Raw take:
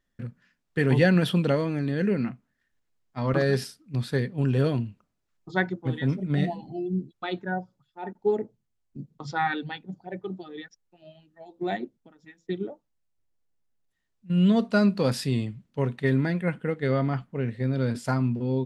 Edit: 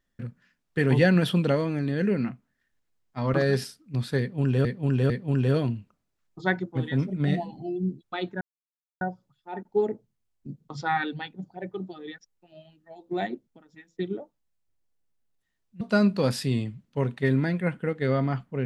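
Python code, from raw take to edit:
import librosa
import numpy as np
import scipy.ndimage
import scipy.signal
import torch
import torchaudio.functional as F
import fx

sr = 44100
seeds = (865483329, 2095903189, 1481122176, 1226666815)

y = fx.edit(x, sr, fx.repeat(start_s=4.2, length_s=0.45, count=3),
    fx.insert_silence(at_s=7.51, length_s=0.6),
    fx.cut(start_s=14.31, length_s=0.31), tone=tone)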